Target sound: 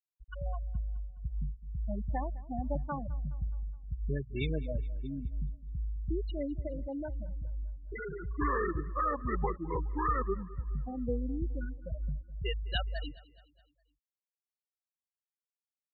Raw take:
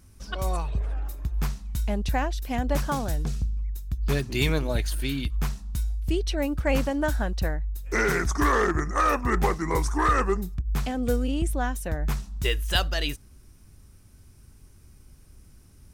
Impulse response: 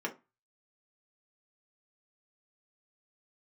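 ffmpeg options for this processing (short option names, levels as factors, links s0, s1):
-filter_complex "[0:a]asplit=3[s0][s1][s2];[s0]afade=t=out:st=6.66:d=0.02[s3];[s1]volume=18.8,asoftclip=hard,volume=0.0531,afade=t=in:st=6.66:d=0.02,afade=t=out:st=8.29:d=0.02[s4];[s2]afade=t=in:st=8.29:d=0.02[s5];[s3][s4][s5]amix=inputs=3:normalize=0,asettb=1/sr,asplit=3[s6][s7][s8];[s6]atrim=end=11.234[s9];[s7]atrim=start=11.23:end=11.85,asetpts=PTS-STARTPTS,afade=t=in:d=0.004:c=qsin,afade=t=out:st=0.616:d=0.004:c=qsin,equalizer=f=760:w=2.7:g=-11.5[s10];[s8]atrim=start=11.846[s11];[s9][s10]acrossfade=d=0.004:c1=hsin:c2=qsin[s12];[s12][s11]acrossfade=d=0.004:c1=qsin:c2=hsin,afftfilt=real='re*gte(hypot(re,im),0.158)':imag='im*gte(hypot(re,im),0.158)':win_size=1024:overlap=0.75,aecho=1:1:209|418|627|836:0.0944|0.0481|0.0246|0.0125,volume=0.398"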